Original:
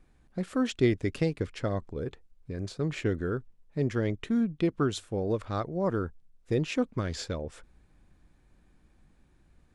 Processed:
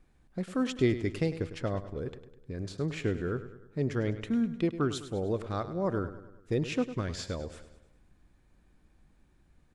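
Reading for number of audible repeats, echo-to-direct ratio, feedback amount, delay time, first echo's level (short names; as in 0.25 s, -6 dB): 4, -11.5 dB, 52%, 0.102 s, -13.0 dB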